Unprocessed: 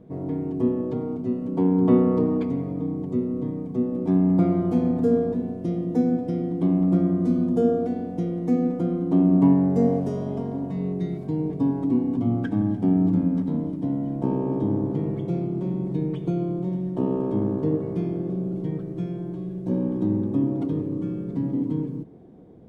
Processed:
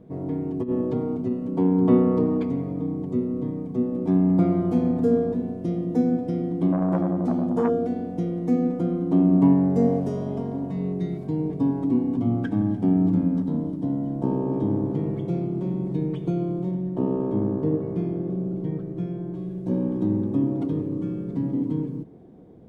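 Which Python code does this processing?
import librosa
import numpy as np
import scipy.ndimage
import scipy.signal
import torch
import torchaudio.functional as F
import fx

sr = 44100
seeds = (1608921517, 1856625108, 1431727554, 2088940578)

y = fx.over_compress(x, sr, threshold_db=-24.0, ratio=-0.5, at=(0.62, 1.3), fade=0.02)
y = fx.transformer_sat(y, sr, knee_hz=610.0, at=(6.72, 7.7))
y = fx.peak_eq(y, sr, hz=2300.0, db=-6.0, octaves=0.63, at=(13.37, 14.54))
y = fx.high_shelf(y, sr, hz=2800.0, db=-7.5, at=(16.71, 19.35))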